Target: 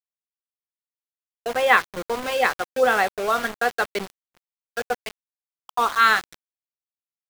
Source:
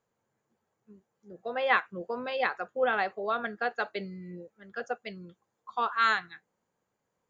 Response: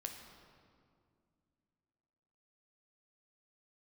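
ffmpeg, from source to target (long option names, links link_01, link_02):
-af "bandreject=frequency=166.9:width_type=h:width=4,bandreject=frequency=333.8:width_type=h:width=4,bandreject=frequency=500.7:width_type=h:width=4,bandreject=frequency=667.6:width_type=h:width=4,bandreject=frequency=834.5:width_type=h:width=4,bandreject=frequency=1001.4:width_type=h:width=4,bandreject=frequency=1168.3:width_type=h:width=4,bandreject=frequency=1335.2:width_type=h:width=4,bandreject=frequency=1502.1:width_type=h:width=4,bandreject=frequency=1669:width_type=h:width=4,bandreject=frequency=1835.9:width_type=h:width=4,bandreject=frequency=2002.8:width_type=h:width=4,bandreject=frequency=2169.7:width_type=h:width=4,bandreject=frequency=2336.6:width_type=h:width=4,bandreject=frequency=2503.5:width_type=h:width=4,bandreject=frequency=2670.4:width_type=h:width=4,bandreject=frequency=2837.3:width_type=h:width=4,bandreject=frequency=3004.2:width_type=h:width=4,bandreject=frequency=3171.1:width_type=h:width=4,bandreject=frequency=3338:width_type=h:width=4,bandreject=frequency=3504.9:width_type=h:width=4,bandreject=frequency=3671.8:width_type=h:width=4,bandreject=frequency=3838.7:width_type=h:width=4,bandreject=frequency=4005.6:width_type=h:width=4,bandreject=frequency=4172.5:width_type=h:width=4,bandreject=frequency=4339.4:width_type=h:width=4,bandreject=frequency=4506.3:width_type=h:width=4,bandreject=frequency=4673.2:width_type=h:width=4,bandreject=frequency=4840.1:width_type=h:width=4,aeval=exprs='val(0)*gte(abs(val(0)),0.0168)':channel_layout=same,agate=range=-33dB:threshold=-47dB:ratio=3:detection=peak,volume=8.5dB"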